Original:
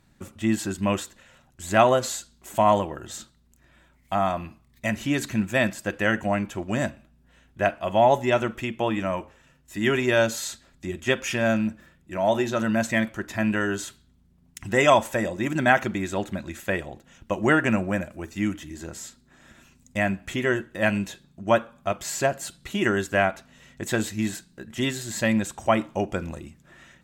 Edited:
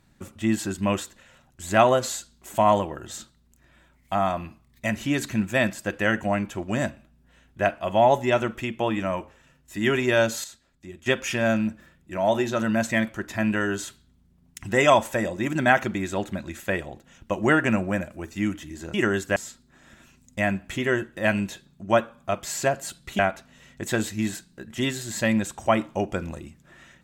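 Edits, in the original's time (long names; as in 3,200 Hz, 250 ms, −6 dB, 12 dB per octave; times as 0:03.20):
0:10.44–0:11.06: clip gain −9.5 dB
0:22.77–0:23.19: move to 0:18.94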